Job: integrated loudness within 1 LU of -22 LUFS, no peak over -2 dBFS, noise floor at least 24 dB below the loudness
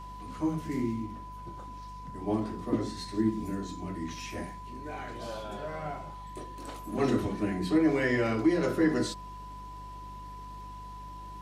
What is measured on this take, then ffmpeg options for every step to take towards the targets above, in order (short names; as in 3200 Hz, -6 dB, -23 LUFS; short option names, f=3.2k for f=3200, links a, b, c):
hum 50 Hz; harmonics up to 200 Hz; hum level -44 dBFS; steady tone 1000 Hz; tone level -43 dBFS; loudness -31.5 LUFS; peak -15.0 dBFS; loudness target -22.0 LUFS
-> -af "bandreject=f=50:t=h:w=4,bandreject=f=100:t=h:w=4,bandreject=f=150:t=h:w=4,bandreject=f=200:t=h:w=4"
-af "bandreject=f=1k:w=30"
-af "volume=9.5dB"